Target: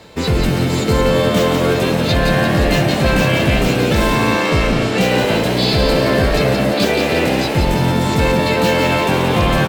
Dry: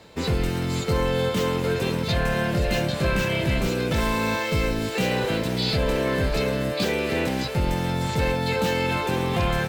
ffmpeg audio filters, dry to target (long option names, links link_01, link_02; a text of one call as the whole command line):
ffmpeg -i in.wav -filter_complex "[0:a]asettb=1/sr,asplit=3[link_01][link_02][link_03];[link_01]atrim=end=4.154[link_04];[link_02]atrim=start=4.15:end=5.01,asetpts=PTS-STARTPTS,afade=type=in:duration=0.004:curve=qsin,afade=type=out:start_time=0.856:duration=0.004:curve=qsin,adynamicsmooth=sensitivity=5:basefreq=7700[link_05];[link_03]atrim=start=5.006[link_06];[link_04][link_05]acrossfade=duration=0.004:curve1=hsin:curve2=qsin[link_07];[link_07][link_06]acrossfade=duration=0.004:curve1=qsin:curve2=hsin,asplit=8[link_08][link_09][link_10][link_11][link_12][link_13][link_14][link_15];[link_09]adelay=173,afreqshift=80,volume=-5.5dB[link_16];[link_10]adelay=346,afreqshift=160,volume=-10.7dB[link_17];[link_11]adelay=519,afreqshift=240,volume=-15.9dB[link_18];[link_12]adelay=692,afreqshift=320,volume=-21.1dB[link_19];[link_13]adelay=865,afreqshift=400,volume=-26.3dB[link_20];[link_14]adelay=1038,afreqshift=480,volume=-31.5dB[link_21];[link_15]adelay=1211,afreqshift=560,volume=-36.7dB[link_22];[link_08][link_16][link_17][link_18][link_19][link_20][link_21][link_22]amix=inputs=8:normalize=0,volume=7.5dB" out.wav